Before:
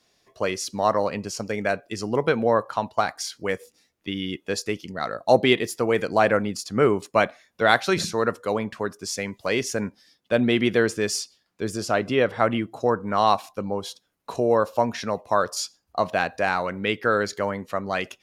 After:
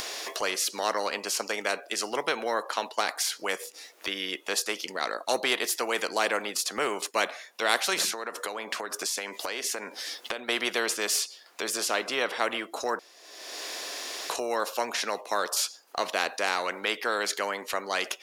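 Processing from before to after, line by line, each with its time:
8.12–10.49 compressor, threshold -34 dBFS
12.99–14.3 room tone
whole clip: HPF 400 Hz 24 dB/oct; upward compressor, threshold -30 dBFS; spectral compressor 2:1; gain -5 dB

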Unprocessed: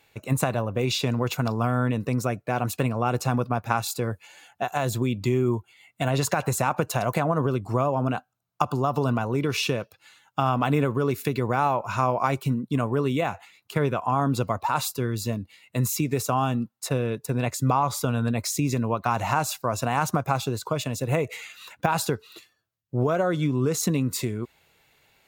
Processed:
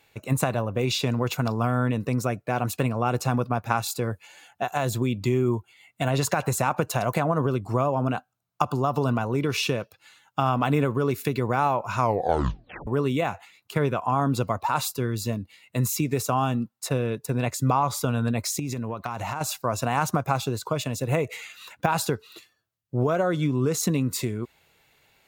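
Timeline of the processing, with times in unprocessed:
11.99 tape stop 0.88 s
18.59–19.41 compressor, threshold -26 dBFS

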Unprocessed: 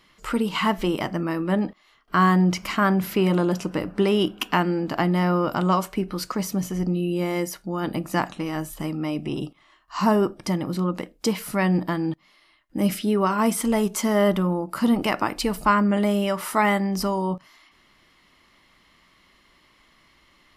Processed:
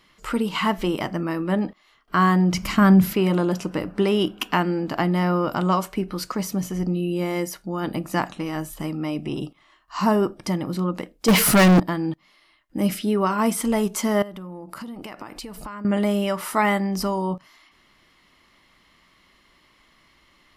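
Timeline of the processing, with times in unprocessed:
2.54–3.13 tone controls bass +12 dB, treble +4 dB
11.28–11.8 sample leveller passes 5
14.22–15.85 compressor 10:1, threshold -32 dBFS

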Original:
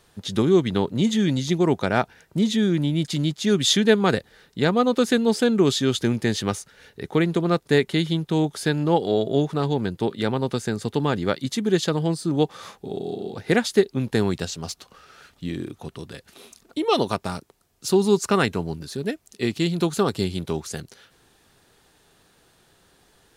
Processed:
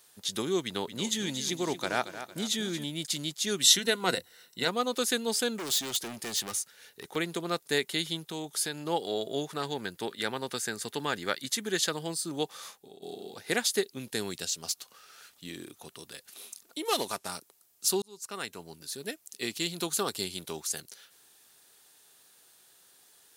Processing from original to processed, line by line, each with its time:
0.65–2.84 feedback echo 0.228 s, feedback 42%, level -11.5 dB
3.62–4.68 ripple EQ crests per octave 2, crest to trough 10 dB
5.58–7.16 overloaded stage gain 24 dB
8.25–8.86 compressor 2:1, threshold -23 dBFS
9.5–11.93 bell 1700 Hz +5.5 dB
12.57–13.02 fade out, to -14.5 dB
13.85–14.64 bell 950 Hz -5 dB 1.4 oct
16.85–17.29 CVSD 64 kbps
18.02–19.13 fade in
whole clip: RIAA curve recording; gain -7.5 dB

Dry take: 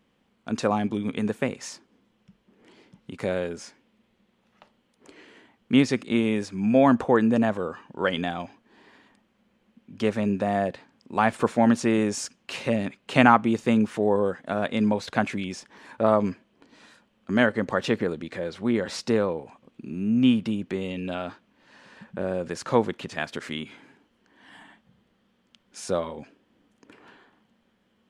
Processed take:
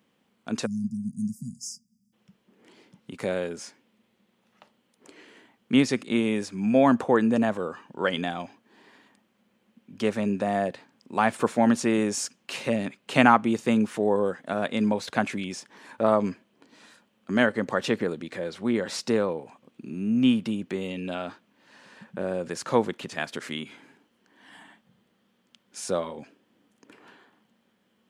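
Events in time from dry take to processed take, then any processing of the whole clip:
0.66–2.13 spectral delete 250–4700 Hz
whole clip: HPF 120 Hz 12 dB/oct; high shelf 8200 Hz +8.5 dB; gain -1 dB

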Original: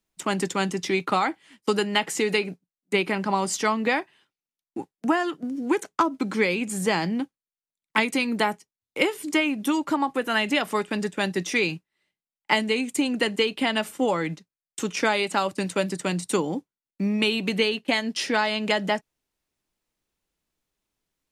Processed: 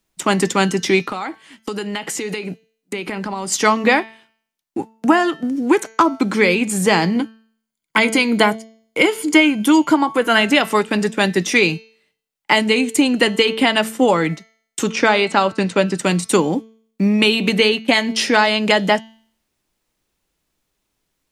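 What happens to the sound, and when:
1.02–3.52 compressor 8:1, threshold -30 dBFS
7.15–10.41 ripple EQ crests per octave 1.8, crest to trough 7 dB
14.9–15.97 air absorption 80 m
whole clip: de-hum 222.6 Hz, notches 31; maximiser +10 dB; gain -1 dB

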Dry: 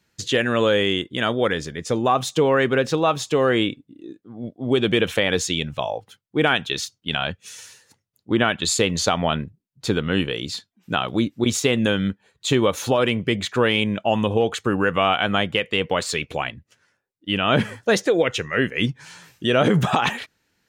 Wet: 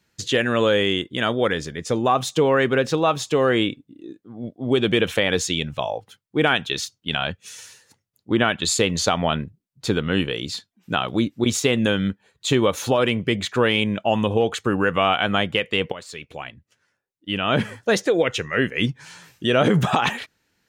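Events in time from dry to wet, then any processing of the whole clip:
15.92–18.82 fade in equal-power, from -15.5 dB

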